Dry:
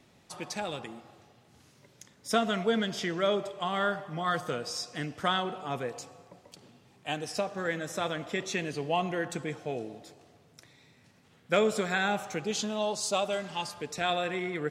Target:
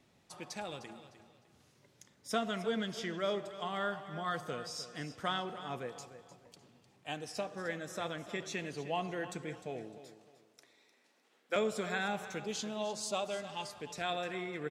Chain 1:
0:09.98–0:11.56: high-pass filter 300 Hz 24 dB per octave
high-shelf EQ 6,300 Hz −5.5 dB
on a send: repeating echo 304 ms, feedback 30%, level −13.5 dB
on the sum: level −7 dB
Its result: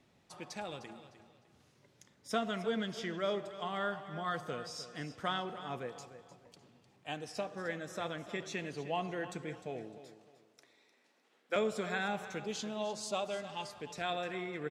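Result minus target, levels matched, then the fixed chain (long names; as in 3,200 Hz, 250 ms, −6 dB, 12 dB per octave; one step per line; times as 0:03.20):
8,000 Hz band −2.5 dB
0:09.98–0:11.56: high-pass filter 300 Hz 24 dB per octave
on a send: repeating echo 304 ms, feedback 30%, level −13.5 dB
on the sum: level −7 dB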